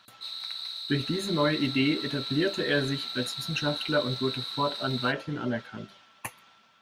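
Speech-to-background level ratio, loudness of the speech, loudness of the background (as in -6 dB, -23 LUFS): 4.5 dB, -29.5 LUFS, -34.0 LUFS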